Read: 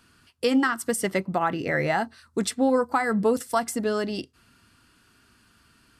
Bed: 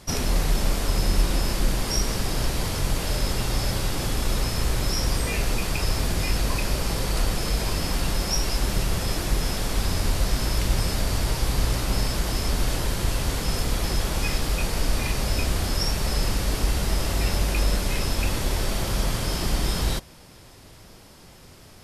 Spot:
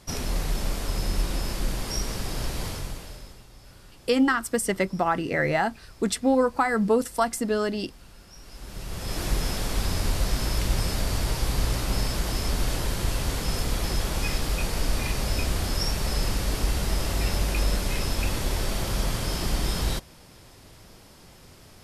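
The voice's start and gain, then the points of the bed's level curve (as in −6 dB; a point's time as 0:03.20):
3.65 s, +0.5 dB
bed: 0:02.69 −5 dB
0:03.48 −25 dB
0:08.32 −25 dB
0:09.23 −2 dB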